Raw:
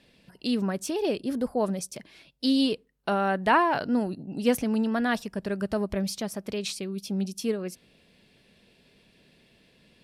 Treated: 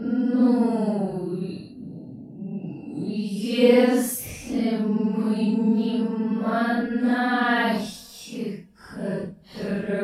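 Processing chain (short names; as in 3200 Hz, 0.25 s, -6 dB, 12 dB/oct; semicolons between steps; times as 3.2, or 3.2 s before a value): Paulstretch 6.1×, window 0.05 s, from 3.88; gain +2.5 dB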